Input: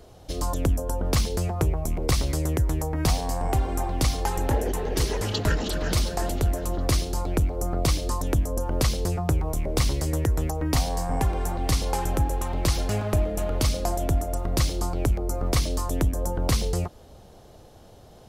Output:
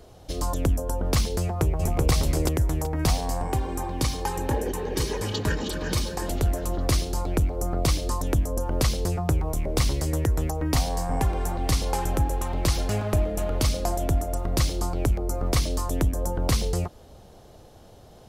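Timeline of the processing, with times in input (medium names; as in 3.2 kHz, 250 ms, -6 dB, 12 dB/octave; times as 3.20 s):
1.41–2.10 s: echo throw 380 ms, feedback 25%, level -1.5 dB
3.43–6.29 s: comb of notches 680 Hz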